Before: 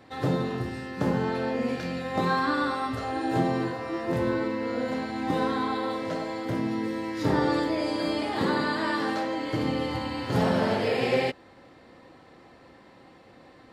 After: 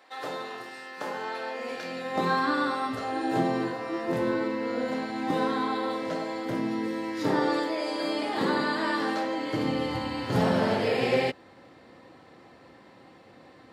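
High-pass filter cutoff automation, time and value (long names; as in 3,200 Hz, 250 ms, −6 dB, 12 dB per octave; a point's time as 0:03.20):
0:01.58 670 Hz
0:02.31 170 Hz
0:07.18 170 Hz
0:07.82 420 Hz
0:08.42 180 Hz
0:09.37 180 Hz
0:09.99 78 Hz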